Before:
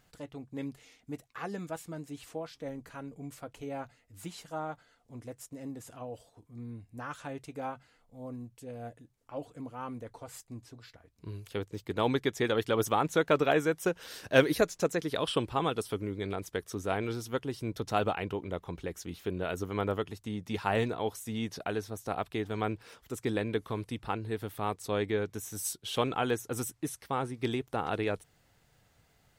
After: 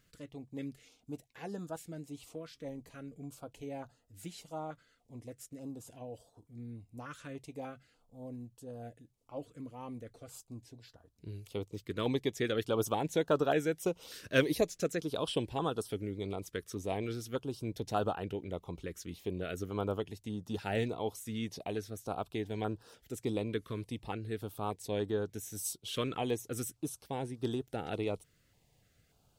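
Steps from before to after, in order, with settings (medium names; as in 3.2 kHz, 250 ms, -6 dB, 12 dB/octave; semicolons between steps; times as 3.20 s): step-sequenced notch 3.4 Hz 810–2200 Hz; trim -2.5 dB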